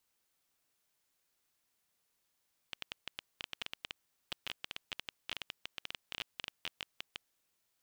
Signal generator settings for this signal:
Geiger counter clicks 12 per second −21.5 dBFS 4.70 s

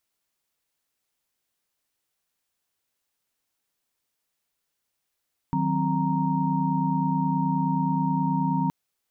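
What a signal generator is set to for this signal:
held notes D#3/F#3/C4/A#5 sine, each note −27 dBFS 3.17 s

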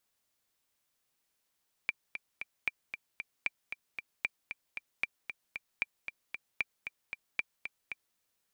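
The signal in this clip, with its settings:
click track 229 BPM, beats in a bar 3, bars 8, 2,360 Hz, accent 8.5 dB −16.5 dBFS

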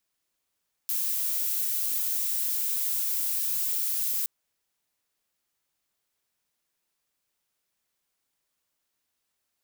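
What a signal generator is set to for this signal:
noise violet, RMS −28 dBFS 3.37 s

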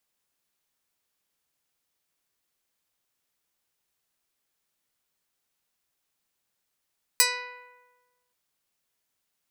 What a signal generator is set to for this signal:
Karplus-Strong string B4, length 1.13 s, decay 1.30 s, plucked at 0.14, medium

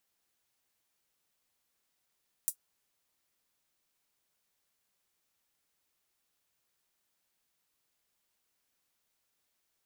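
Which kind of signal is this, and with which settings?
closed synth hi-hat, high-pass 8,500 Hz, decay 0.09 s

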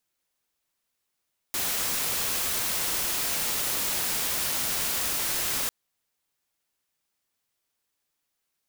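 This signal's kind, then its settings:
noise white, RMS −28 dBFS 4.15 s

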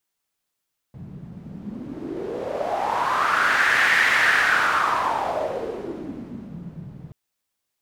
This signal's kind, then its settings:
wind from filtered noise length 6.18 s, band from 150 Hz, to 1,800 Hz, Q 4.4, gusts 1, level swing 20 dB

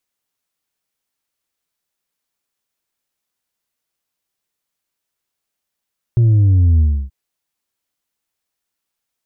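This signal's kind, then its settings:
bass drop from 120 Hz, over 0.93 s, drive 3 dB, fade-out 0.30 s, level −9 dB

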